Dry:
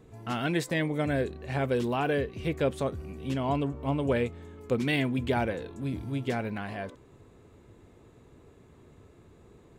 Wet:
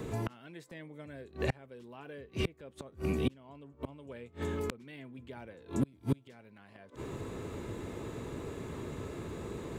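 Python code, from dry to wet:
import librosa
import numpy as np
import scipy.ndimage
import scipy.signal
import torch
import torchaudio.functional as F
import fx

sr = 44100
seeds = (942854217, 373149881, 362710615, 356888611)

y = fx.low_shelf(x, sr, hz=89.0, db=-6.5)
y = fx.notch(y, sr, hz=730.0, q=12.0)
y = fx.gate_flip(y, sr, shuts_db=-29.0, range_db=-36)
y = fx.band_squash(y, sr, depth_pct=40)
y = F.gain(torch.from_numpy(y), 13.0).numpy()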